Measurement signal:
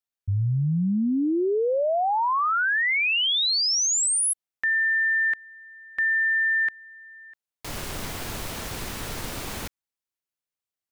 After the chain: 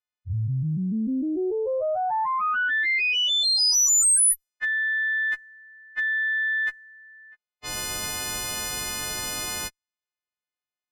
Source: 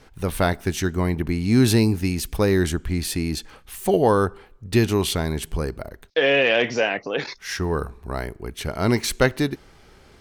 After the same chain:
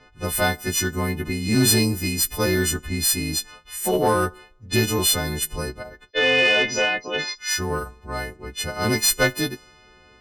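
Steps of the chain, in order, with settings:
every partial snapped to a pitch grid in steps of 3 semitones
harmonic generator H 2 −18 dB, 5 −26 dB, 6 −30 dB, 7 −38 dB, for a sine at −2.5 dBFS
low-pass that shuts in the quiet parts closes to 2,800 Hz, open at −17.5 dBFS
level −3.5 dB

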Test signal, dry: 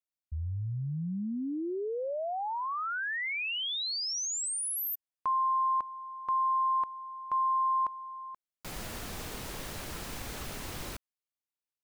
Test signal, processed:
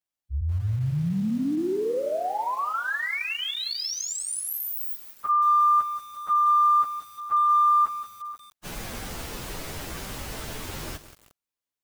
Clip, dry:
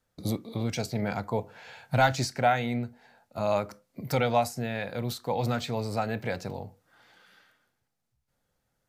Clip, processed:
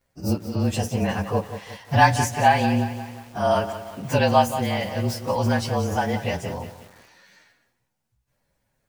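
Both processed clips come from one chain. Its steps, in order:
partials spread apart or drawn together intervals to 109%
feedback echo at a low word length 179 ms, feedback 55%, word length 8 bits, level −11 dB
level +8.5 dB

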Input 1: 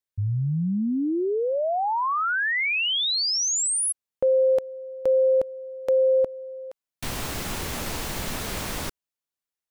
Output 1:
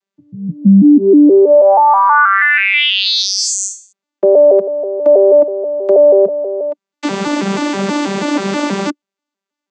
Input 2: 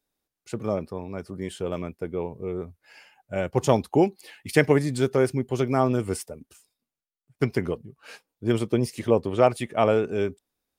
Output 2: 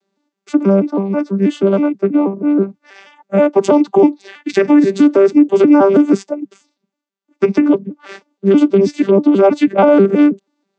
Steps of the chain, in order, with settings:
vocoder with an arpeggio as carrier bare fifth, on G3, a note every 161 ms
high-pass filter 190 Hz 12 dB per octave
boost into a limiter +19.5 dB
level −1 dB

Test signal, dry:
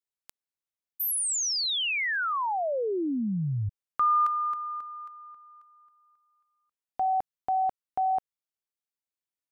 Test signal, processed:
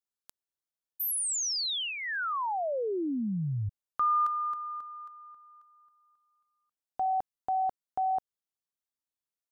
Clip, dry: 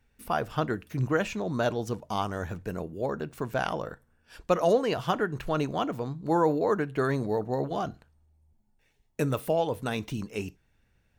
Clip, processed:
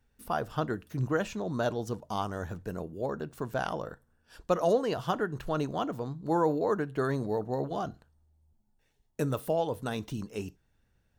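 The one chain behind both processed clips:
parametric band 2,300 Hz −7 dB 0.54 octaves
level −2.5 dB

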